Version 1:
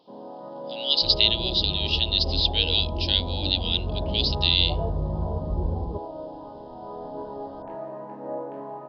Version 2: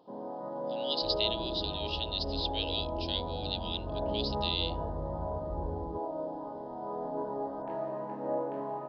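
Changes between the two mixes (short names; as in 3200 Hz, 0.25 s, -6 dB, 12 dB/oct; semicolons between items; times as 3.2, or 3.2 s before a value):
speech -12.0 dB; second sound -11.0 dB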